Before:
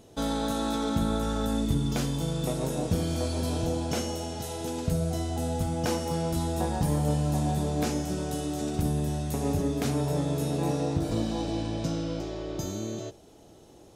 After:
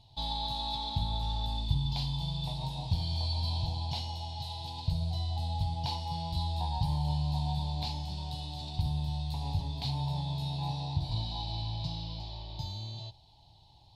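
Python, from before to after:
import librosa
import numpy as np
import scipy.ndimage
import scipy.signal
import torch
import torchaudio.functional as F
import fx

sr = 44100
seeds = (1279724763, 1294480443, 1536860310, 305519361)

y = fx.curve_eq(x, sr, hz=(130.0, 210.0, 310.0, 480.0, 920.0, 1300.0, 4300.0, 6200.0), db=(0, -18, -23, -27, 3, -29, 9, -19))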